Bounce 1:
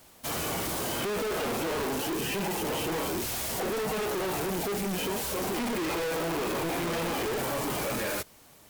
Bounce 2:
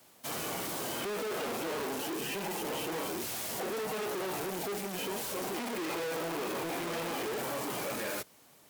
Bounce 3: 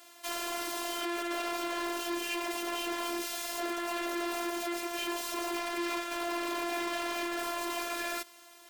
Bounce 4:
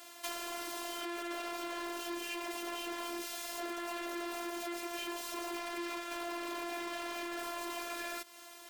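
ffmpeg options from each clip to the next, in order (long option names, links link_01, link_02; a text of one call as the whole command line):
ffmpeg -i in.wav -filter_complex "[0:a]highpass=130,acrossover=split=290|720|2500[link_01][link_02][link_03][link_04];[link_01]asoftclip=type=hard:threshold=-39.5dB[link_05];[link_05][link_02][link_03][link_04]amix=inputs=4:normalize=0,volume=-4.5dB" out.wav
ffmpeg -i in.wav -filter_complex "[0:a]asplit=2[link_01][link_02];[link_02]highpass=frequency=720:poles=1,volume=18dB,asoftclip=type=tanh:threshold=-23dB[link_03];[link_01][link_03]amix=inputs=2:normalize=0,lowpass=frequency=5300:poles=1,volume=-6dB,afftfilt=real='hypot(re,im)*cos(PI*b)':imag='0':win_size=512:overlap=0.75" out.wav
ffmpeg -i in.wav -af "acompressor=threshold=-38dB:ratio=4,volume=2.5dB" out.wav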